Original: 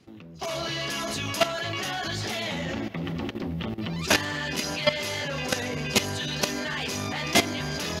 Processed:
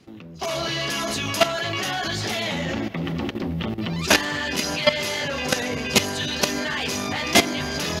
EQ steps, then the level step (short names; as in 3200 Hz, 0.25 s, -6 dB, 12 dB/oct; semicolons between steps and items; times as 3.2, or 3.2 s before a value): notches 50/100/150 Hz; +4.5 dB